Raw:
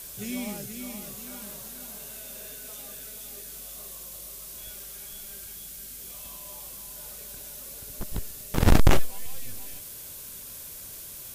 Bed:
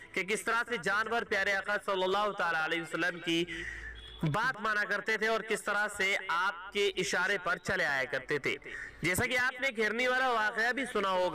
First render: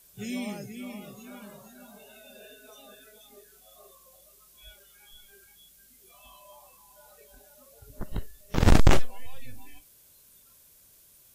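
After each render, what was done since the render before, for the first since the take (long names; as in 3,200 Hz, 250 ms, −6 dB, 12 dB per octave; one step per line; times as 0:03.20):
noise reduction from a noise print 16 dB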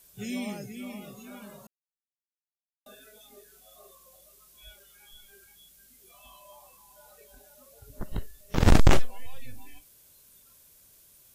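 0:01.67–0:02.86: silence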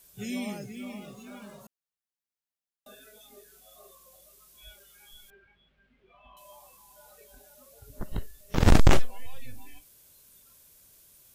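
0:00.58–0:01.61: running median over 3 samples
0:05.30–0:06.37: low-pass filter 2,600 Hz 24 dB per octave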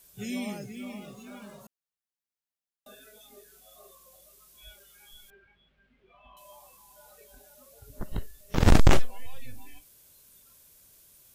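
no processing that can be heard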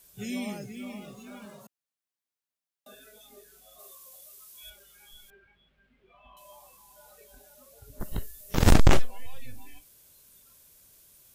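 0:01.45–0:02.93: high-pass filter 100 Hz
0:03.79–0:04.70: spectral tilt +2 dB per octave
0:08.00–0:08.74: high-shelf EQ 6,600 Hz +10.5 dB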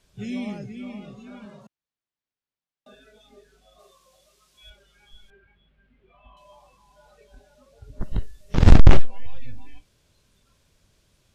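low-pass filter 4,500 Hz 12 dB per octave
low-shelf EQ 210 Hz +8.5 dB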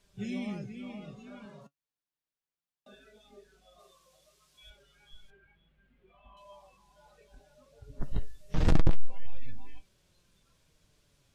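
soft clipping −12.5 dBFS, distortion −8 dB
flanger 0.31 Hz, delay 4.9 ms, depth 2.3 ms, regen +55%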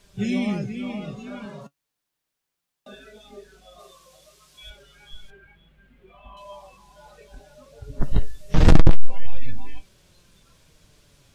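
level +11.5 dB
brickwall limiter −3 dBFS, peak gain reduction 2 dB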